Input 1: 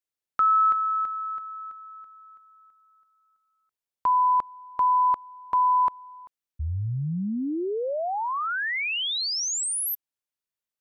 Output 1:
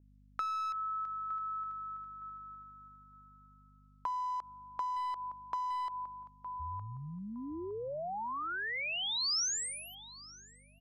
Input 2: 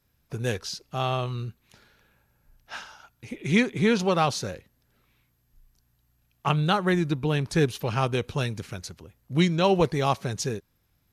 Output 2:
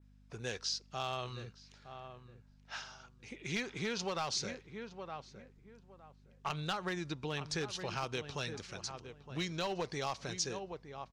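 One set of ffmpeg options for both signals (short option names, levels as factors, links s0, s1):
-filter_complex "[0:a]aeval=exprs='val(0)+0.00562*(sin(2*PI*50*n/s)+sin(2*PI*2*50*n/s)/2+sin(2*PI*3*50*n/s)/3+sin(2*PI*4*50*n/s)/4+sin(2*PI*5*50*n/s)/5)':c=same,lowpass=f=7700:w=0.5412,lowpass=f=7700:w=1.3066,lowshelf=f=380:g=-10.5,asplit=2[s0][s1];[s1]adelay=913,lowpass=f=1600:p=1,volume=0.251,asplit=2[s2][s3];[s3]adelay=913,lowpass=f=1600:p=1,volume=0.23,asplit=2[s4][s5];[s5]adelay=913,lowpass=f=1600:p=1,volume=0.23[s6];[s0][s2][s4][s6]amix=inputs=4:normalize=0,aeval=exprs='clip(val(0),-1,0.106)':c=same,acompressor=threshold=0.0282:ratio=6:attack=67:release=89:knee=6:detection=rms,adynamicequalizer=threshold=0.00224:dfrequency=5200:dqfactor=1.5:tfrequency=5200:tqfactor=1.5:attack=5:release=100:ratio=0.375:range=3:mode=boostabove:tftype=bell,volume=0.501"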